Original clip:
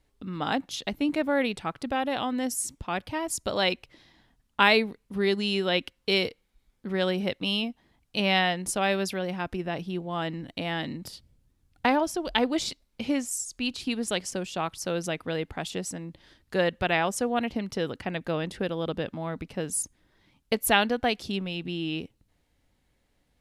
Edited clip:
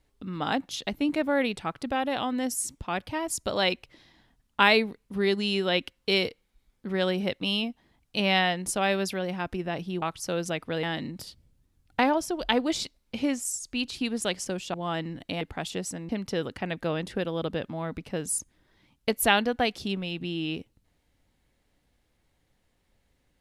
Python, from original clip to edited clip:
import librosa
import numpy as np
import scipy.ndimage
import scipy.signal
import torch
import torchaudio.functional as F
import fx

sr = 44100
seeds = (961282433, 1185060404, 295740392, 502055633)

y = fx.edit(x, sr, fx.swap(start_s=10.02, length_s=0.67, other_s=14.6, other_length_s=0.81),
    fx.cut(start_s=16.09, length_s=1.44), tone=tone)